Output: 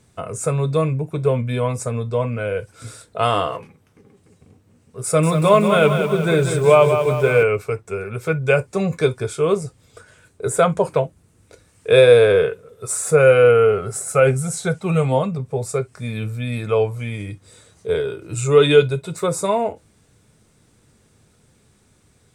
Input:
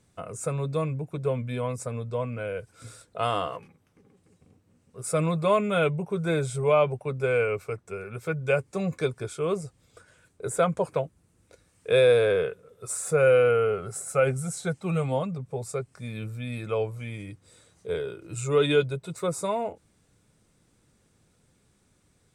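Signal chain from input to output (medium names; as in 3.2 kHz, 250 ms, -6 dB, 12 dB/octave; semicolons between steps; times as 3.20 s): gated-style reverb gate 80 ms falling, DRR 11.5 dB; 5.04–7.43 s: bit-crushed delay 188 ms, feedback 55%, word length 8-bit, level -7 dB; trim +8 dB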